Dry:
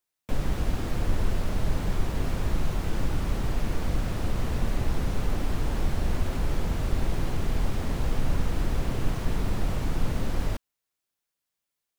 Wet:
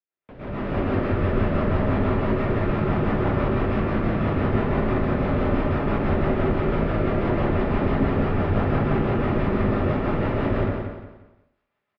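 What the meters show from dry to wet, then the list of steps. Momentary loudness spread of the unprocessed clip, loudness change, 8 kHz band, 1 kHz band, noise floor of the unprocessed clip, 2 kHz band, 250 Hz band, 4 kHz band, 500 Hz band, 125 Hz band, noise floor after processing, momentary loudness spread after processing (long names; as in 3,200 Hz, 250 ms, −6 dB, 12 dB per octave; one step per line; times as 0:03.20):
1 LU, +7.5 dB, below −20 dB, +10.5 dB, −85 dBFS, +8.5 dB, +11.0 dB, −1.5 dB, +13.0 dB, +6.0 dB, −77 dBFS, 2 LU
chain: high-pass filter 140 Hz 6 dB per octave
bass and treble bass −4 dB, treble −11 dB
brickwall limiter −32.5 dBFS, peak gain reduction 9.5 dB
automatic gain control gain up to 15 dB
rotating-speaker cabinet horn 6 Hz
high-frequency loss of the air 360 metres
on a send: repeating echo 176 ms, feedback 34%, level −6 dB
on the sum: dense smooth reverb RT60 0.65 s, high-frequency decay 0.45×, pre-delay 100 ms, DRR −8 dB
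level −4 dB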